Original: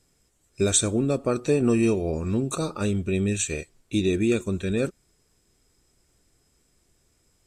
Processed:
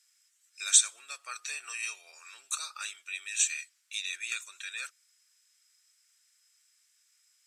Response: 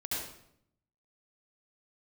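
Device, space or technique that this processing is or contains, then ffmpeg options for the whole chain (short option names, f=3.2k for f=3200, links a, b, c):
headphones lying on a table: -af "highpass=f=1.5k:w=0.5412,highpass=f=1.5k:w=1.3066,equalizer=f=5.7k:t=o:w=0.42:g=4"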